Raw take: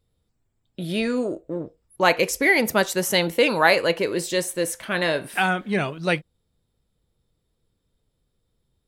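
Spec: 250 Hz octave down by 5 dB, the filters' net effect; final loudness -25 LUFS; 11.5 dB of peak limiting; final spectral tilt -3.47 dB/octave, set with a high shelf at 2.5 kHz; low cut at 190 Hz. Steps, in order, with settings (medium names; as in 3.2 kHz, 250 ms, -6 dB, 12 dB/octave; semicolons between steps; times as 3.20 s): high-pass 190 Hz; peaking EQ 250 Hz -5 dB; treble shelf 2.5 kHz -6 dB; trim +2.5 dB; peak limiter -13 dBFS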